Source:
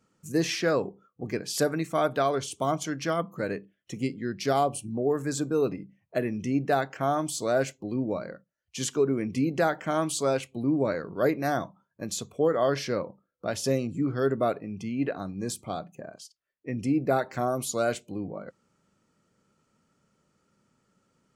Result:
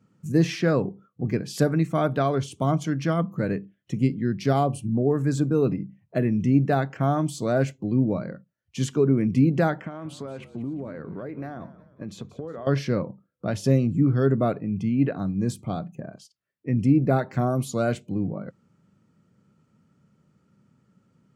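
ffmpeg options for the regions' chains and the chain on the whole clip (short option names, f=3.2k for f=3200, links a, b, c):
-filter_complex "[0:a]asettb=1/sr,asplit=3[a][b][c];[a]atrim=end=9.814[d];[b]atrim=start=9.81:end=12.67,asetpts=PTS-STARTPTS,afade=t=in:d=0.004:c=qsin,afade=t=out:st=2.856:d=0.004:c=qsin,bass=f=250:g=-6,treble=f=4k:g=-13,acompressor=threshold=-35dB:ratio=6:attack=3.2:release=140:knee=1:detection=peak,asplit=5[e][f][g][h][i];[f]adelay=181,afreqshift=-50,volume=-16.5dB[j];[g]adelay=362,afreqshift=-100,volume=-23.1dB[k];[h]adelay=543,afreqshift=-150,volume=-29.6dB[l];[i]adelay=724,afreqshift=-200,volume=-36.2dB[m];[e][j][k][l][m]amix=inputs=5:normalize=0,atrim=end_sample=126126[n];[c]atrim=start=12.666[o];[d][n]acrossfade=d=0.004:c1=hsin:c2=qsin[p];[p][o]acrossfade=d=0.004:c1=qsin:c2=hsin,highpass=110,bass=f=250:g=15,treble=f=4k:g=-6"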